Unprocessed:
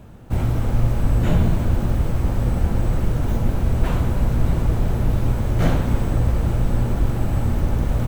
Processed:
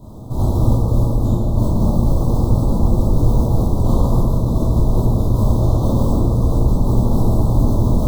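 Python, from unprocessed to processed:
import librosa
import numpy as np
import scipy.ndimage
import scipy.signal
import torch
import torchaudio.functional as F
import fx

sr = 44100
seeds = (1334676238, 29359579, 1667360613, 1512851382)

y = scipy.signal.sosfilt(scipy.signal.ellip(3, 1.0, 40, [1100.0, 3800.0], 'bandstop', fs=sr, output='sos'), x)
y = fx.over_compress(y, sr, threshold_db=-21.0, ratio=-1.0)
y = fx.rev_plate(y, sr, seeds[0], rt60_s=1.8, hf_ratio=0.6, predelay_ms=0, drr_db=-10.0)
y = y * 10.0 ** (-3.0 / 20.0)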